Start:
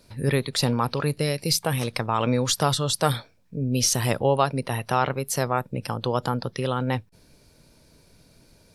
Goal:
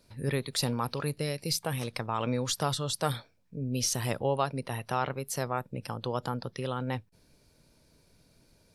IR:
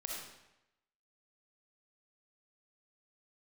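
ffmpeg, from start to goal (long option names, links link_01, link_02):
-filter_complex "[0:a]asettb=1/sr,asplit=3[link_01][link_02][link_03];[link_01]atrim=end=0.464[link_04];[link_02]atrim=start=0.46:end=1.1,asetpts=PTS-STARTPTS,afade=type=in:duration=0.004:curve=qsin,afade=type=out:start_time=0.636:duration=0.004:curve=qsin,highshelf=frequency=6900:gain=7.5[link_05];[link_03]atrim=start=1.096[link_06];[link_04][link_05]acrossfade=duration=0.004:curve1=hsin:curve2=qsin[link_07];[link_07][link_06]acrossfade=duration=0.004:curve1=qsin:curve2=hsin,volume=-7.5dB"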